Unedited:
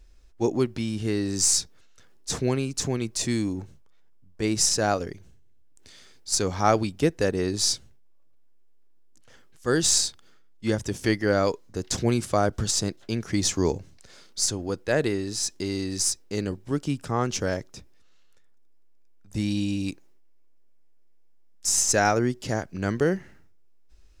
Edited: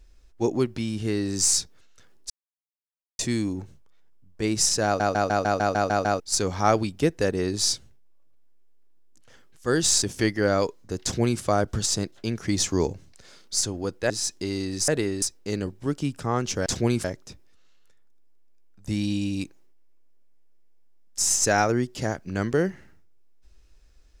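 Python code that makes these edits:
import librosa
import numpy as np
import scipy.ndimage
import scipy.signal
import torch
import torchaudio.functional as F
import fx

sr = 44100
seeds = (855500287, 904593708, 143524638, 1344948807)

y = fx.edit(x, sr, fx.silence(start_s=2.3, length_s=0.89),
    fx.stutter_over(start_s=4.85, slice_s=0.15, count=9),
    fx.cut(start_s=10.02, length_s=0.85),
    fx.duplicate(start_s=11.88, length_s=0.38, to_s=17.51),
    fx.move(start_s=14.95, length_s=0.34, to_s=16.07), tone=tone)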